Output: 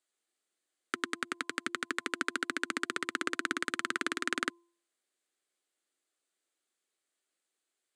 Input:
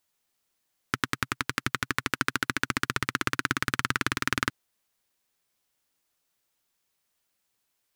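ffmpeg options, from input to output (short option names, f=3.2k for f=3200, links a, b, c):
-af "highpass=f=260:w=0.5412,highpass=f=260:w=1.3066,equalizer=f=350:t=q:w=4:g=6,equalizer=f=940:t=q:w=4:g=-8,equalizer=f=2.6k:t=q:w=4:g=-3,equalizer=f=5.5k:t=q:w=4:g=-8,equalizer=f=8.1k:t=q:w=4:g=3,lowpass=f=9.7k:w=0.5412,lowpass=f=9.7k:w=1.3066,bandreject=f=343.2:t=h:w=4,bandreject=f=686.4:t=h:w=4,bandreject=f=1.0296k:t=h:w=4,volume=-4.5dB"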